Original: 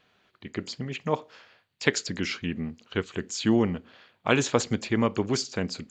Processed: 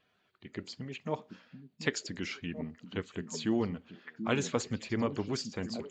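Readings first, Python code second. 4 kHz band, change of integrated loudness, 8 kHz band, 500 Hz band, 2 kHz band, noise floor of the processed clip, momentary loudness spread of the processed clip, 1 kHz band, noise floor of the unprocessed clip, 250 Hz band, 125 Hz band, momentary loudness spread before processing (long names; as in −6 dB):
−8.0 dB, −7.5 dB, −8.5 dB, −7.5 dB, −8.5 dB, −74 dBFS, 14 LU, −8.5 dB, −72 dBFS, −7.0 dB, −7.0 dB, 12 LU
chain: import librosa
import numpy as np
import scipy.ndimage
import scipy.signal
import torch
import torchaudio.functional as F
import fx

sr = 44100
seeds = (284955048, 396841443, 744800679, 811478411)

y = fx.spec_quant(x, sr, step_db=15)
y = fx.echo_stepped(y, sr, ms=734, hz=200.0, octaves=1.4, feedback_pct=70, wet_db=-6)
y = y * 10.0 ** (-7.5 / 20.0)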